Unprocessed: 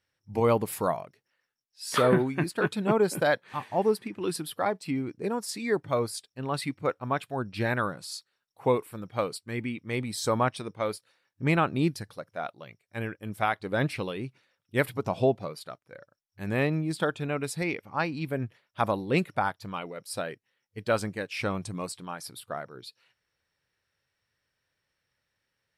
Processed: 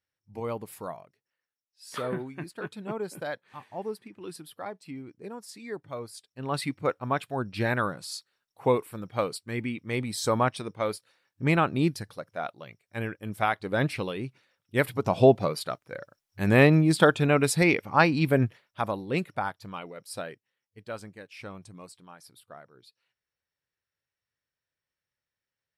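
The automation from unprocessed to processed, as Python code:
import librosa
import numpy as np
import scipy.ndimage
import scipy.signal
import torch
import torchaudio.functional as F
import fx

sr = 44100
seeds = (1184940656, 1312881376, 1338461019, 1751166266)

y = fx.gain(x, sr, db=fx.line((6.08, -10.0), (6.54, 1.0), (14.87, 1.0), (15.44, 8.5), (18.43, 8.5), (18.83, -3.0), (20.24, -3.0), (20.89, -11.5)))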